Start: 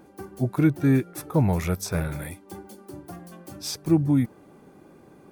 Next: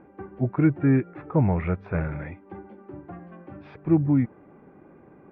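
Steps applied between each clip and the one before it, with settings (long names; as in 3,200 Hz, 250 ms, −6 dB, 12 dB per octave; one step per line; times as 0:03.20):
Butterworth low-pass 2,400 Hz 36 dB per octave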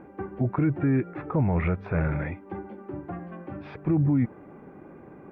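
brickwall limiter −20.5 dBFS, peak gain reduction 11 dB
level +4.5 dB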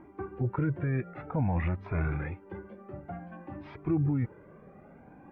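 flanger whose copies keep moving one way rising 0.54 Hz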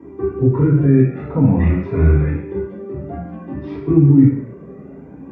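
convolution reverb, pre-delay 3 ms, DRR −11.5 dB
level −2 dB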